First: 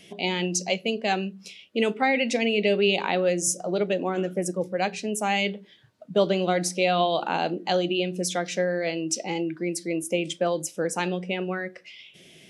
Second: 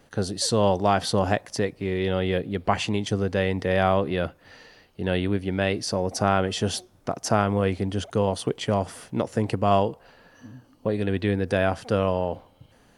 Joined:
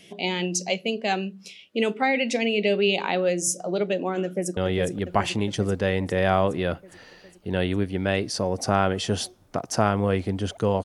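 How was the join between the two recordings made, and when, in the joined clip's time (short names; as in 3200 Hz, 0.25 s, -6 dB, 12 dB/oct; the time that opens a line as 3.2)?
first
4.24–4.57 echo throw 0.41 s, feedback 70%, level -6 dB
4.57 switch to second from 2.1 s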